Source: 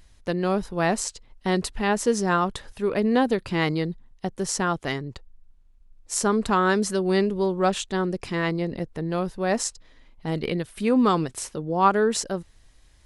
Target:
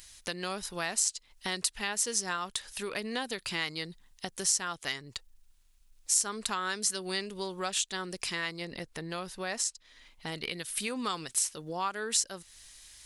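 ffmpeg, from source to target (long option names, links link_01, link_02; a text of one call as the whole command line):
ffmpeg -i in.wav -af "tiltshelf=frequency=1100:gain=-9.5,acompressor=threshold=-37dB:ratio=2.5,asetnsamples=nb_out_samples=441:pad=0,asendcmd='8.65 highshelf g 2;10.5 highshelf g 7.5',highshelf=frequency=4400:gain=7.5" out.wav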